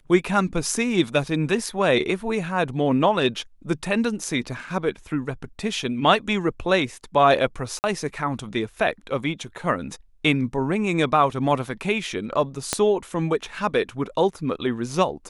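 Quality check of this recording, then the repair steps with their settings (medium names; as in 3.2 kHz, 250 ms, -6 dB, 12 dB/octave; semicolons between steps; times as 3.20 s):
7.79–7.84 s: dropout 49 ms
12.73 s: pop -6 dBFS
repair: de-click; interpolate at 7.79 s, 49 ms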